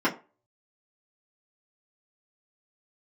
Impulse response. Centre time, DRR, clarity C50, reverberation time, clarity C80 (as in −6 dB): 15 ms, −9.0 dB, 15.5 dB, 0.35 s, 20.0 dB